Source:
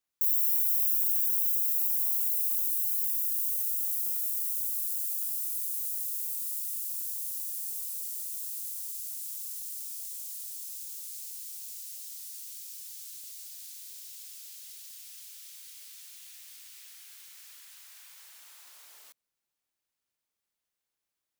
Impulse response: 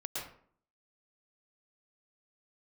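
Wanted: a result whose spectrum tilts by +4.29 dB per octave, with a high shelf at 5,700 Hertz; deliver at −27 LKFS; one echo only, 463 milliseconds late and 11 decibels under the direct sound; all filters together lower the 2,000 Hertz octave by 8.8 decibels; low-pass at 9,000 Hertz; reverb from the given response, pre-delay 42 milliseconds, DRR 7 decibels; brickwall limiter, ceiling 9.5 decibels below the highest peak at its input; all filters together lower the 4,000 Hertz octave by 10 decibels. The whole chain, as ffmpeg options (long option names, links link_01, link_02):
-filter_complex "[0:a]lowpass=9000,equalizer=frequency=2000:width_type=o:gain=-7.5,equalizer=frequency=4000:width_type=o:gain=-7.5,highshelf=frequency=5700:gain=-8,alimiter=level_in=21.5dB:limit=-24dB:level=0:latency=1,volume=-21.5dB,aecho=1:1:463:0.282,asplit=2[link_01][link_02];[1:a]atrim=start_sample=2205,adelay=42[link_03];[link_02][link_03]afir=irnorm=-1:irlink=0,volume=-8.5dB[link_04];[link_01][link_04]amix=inputs=2:normalize=0,volume=25.5dB"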